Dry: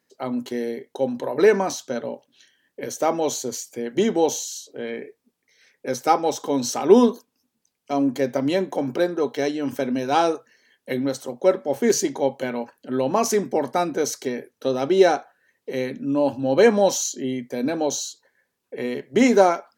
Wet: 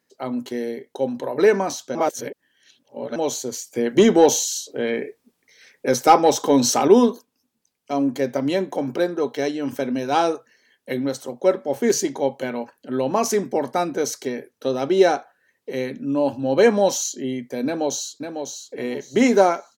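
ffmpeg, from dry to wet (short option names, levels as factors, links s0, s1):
-filter_complex "[0:a]asettb=1/sr,asplit=3[s0][s1][s2];[s0]atrim=end=3.754[s3];[s1]atrim=start=3.75:end=6.88,asetpts=PTS-STARTPTS,afade=t=in:d=0.004:c=qsin,afade=t=out:st=3.126:d=0.004:c=qsin,acontrast=80[s4];[s2]atrim=start=6.876[s5];[s3][s4]acrossfade=d=0.004:c1=hsin:c2=qsin[s6];[s6][s5]acrossfade=d=0.004:c1=qsin:c2=hsin,asplit=2[s7][s8];[s8]afade=t=in:st=17.65:d=0.01,afade=t=out:st=18.75:d=0.01,aecho=0:1:550|1100|1650:0.473151|0.118288|0.029572[s9];[s7][s9]amix=inputs=2:normalize=0,asplit=3[s10][s11][s12];[s10]atrim=end=1.952[s13];[s11]atrim=start=1.948:end=3.162,asetpts=PTS-STARTPTS,areverse[s14];[s12]atrim=start=3.158[s15];[s13][s14]acrossfade=d=0.004:c1=hsin:c2=hsin[s16];[s16][s15]acrossfade=d=0.004:c1=hsin:c2=hsin"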